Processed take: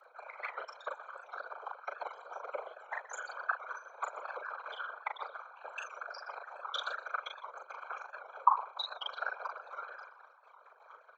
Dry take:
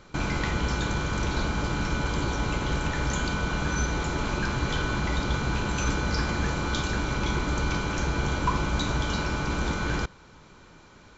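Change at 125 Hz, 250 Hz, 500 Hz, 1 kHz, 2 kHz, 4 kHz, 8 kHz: below −40 dB, below −40 dB, −13.5 dB, −5.0 dB, −11.0 dB, −11.5 dB, can't be measured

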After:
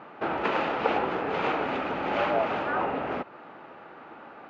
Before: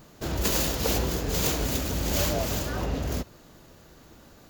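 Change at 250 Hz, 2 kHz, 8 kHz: −2.0 dB, +5.0 dB, below −30 dB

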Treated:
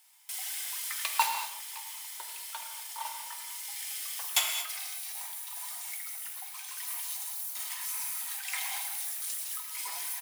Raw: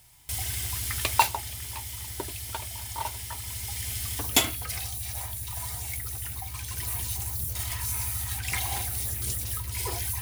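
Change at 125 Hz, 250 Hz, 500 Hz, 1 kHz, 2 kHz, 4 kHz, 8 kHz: below −40 dB, below −35 dB, −14.5 dB, −4.5 dB, −3.0 dB, −3.0 dB, −3.5 dB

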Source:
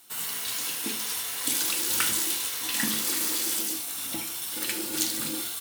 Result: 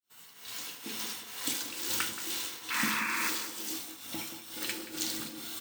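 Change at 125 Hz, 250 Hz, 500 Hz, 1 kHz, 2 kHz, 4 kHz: −5.0, −5.0, −5.5, −0.5, −1.0, −6.5 decibels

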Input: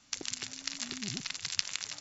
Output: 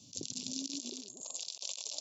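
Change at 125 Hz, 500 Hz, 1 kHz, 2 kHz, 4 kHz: −9.5, +0.5, −10.5, −18.0, −5.5 decibels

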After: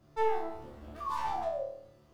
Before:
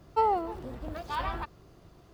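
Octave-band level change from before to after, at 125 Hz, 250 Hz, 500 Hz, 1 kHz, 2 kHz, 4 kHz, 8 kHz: −9.0 dB, −8.5 dB, 0.0 dB, −4.5 dB, −3.5 dB, −6.0 dB, can't be measured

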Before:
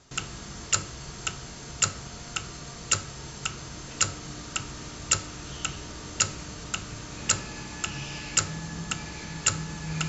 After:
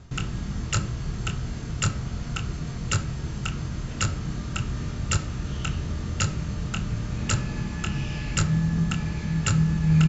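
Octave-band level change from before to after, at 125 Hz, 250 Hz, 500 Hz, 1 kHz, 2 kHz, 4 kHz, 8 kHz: +13.0 dB, +11.5 dB, +2.5 dB, +0.5 dB, 0.0 dB, −2.5 dB, can't be measured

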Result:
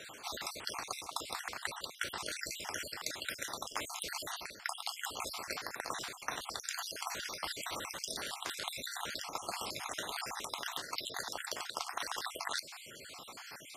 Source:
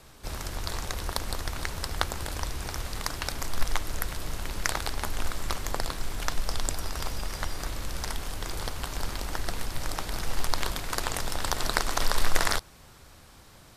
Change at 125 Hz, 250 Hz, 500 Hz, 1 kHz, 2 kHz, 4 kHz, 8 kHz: −23.0, −12.0, −8.5, −6.5, −6.0, −4.5, −6.0 decibels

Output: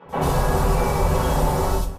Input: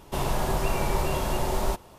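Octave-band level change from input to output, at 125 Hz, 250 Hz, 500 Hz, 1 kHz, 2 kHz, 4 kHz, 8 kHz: +8.5, +7.0, +6.5, +7.0, +4.5, +2.0, +3.5 decibels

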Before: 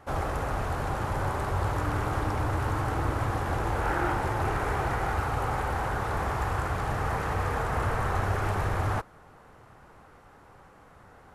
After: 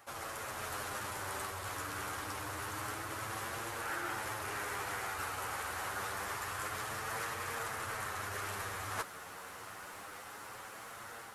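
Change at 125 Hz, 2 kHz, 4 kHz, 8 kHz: −20.0, −5.0, 0.0, +4.0 decibels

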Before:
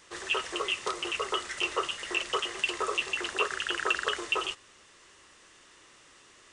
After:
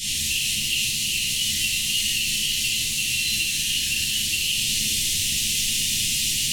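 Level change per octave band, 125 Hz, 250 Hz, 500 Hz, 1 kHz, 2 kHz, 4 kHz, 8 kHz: +22.0 dB, +5.0 dB, below −15 dB, below −25 dB, +5.0 dB, +13.0 dB, +21.0 dB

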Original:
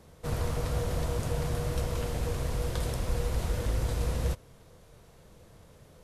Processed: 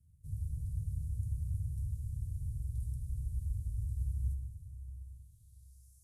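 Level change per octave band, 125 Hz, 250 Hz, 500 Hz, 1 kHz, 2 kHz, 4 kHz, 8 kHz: −4.5 dB, −16.5 dB, below −40 dB, below −40 dB, below −40 dB, below −30 dB, −17.5 dB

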